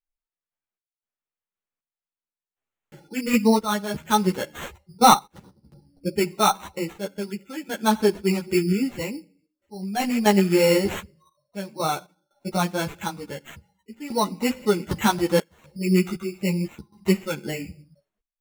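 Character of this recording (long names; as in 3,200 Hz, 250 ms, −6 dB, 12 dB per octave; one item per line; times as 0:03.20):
aliases and images of a low sample rate 4,900 Hz, jitter 0%
sample-and-hold tremolo 3.9 Hz, depth 95%
a shimmering, thickened sound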